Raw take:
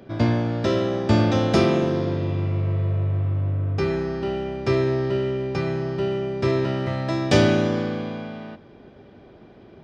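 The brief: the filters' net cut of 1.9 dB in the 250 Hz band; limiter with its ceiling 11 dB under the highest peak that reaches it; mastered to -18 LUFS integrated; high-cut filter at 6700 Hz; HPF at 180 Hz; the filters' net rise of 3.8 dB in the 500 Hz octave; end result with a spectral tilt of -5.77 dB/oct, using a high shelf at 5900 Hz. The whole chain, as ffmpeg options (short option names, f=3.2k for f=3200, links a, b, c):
-af "highpass=180,lowpass=6.7k,equalizer=f=250:t=o:g=-4.5,equalizer=f=500:t=o:g=7,highshelf=f=5.9k:g=-6.5,volume=6.5dB,alimiter=limit=-7.5dB:level=0:latency=1"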